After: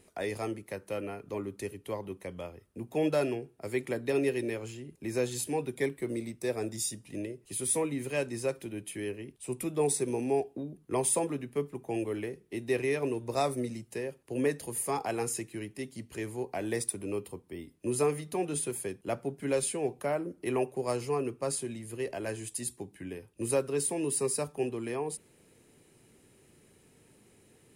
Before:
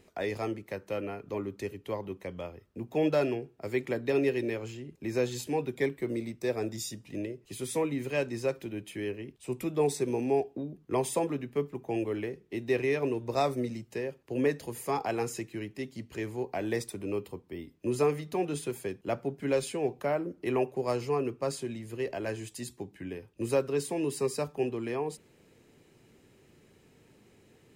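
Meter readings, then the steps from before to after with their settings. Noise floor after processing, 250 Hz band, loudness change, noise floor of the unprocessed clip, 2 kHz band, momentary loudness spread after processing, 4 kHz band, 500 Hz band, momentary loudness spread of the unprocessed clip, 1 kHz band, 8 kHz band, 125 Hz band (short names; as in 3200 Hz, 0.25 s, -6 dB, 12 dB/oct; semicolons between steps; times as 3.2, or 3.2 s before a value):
-63 dBFS, -1.5 dB, -0.5 dB, -63 dBFS, -1.5 dB, 11 LU, -0.5 dB, -1.5 dB, 11 LU, -1.5 dB, +8.5 dB, -1.5 dB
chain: bell 9900 Hz +14.5 dB 0.55 oct; gain -1.5 dB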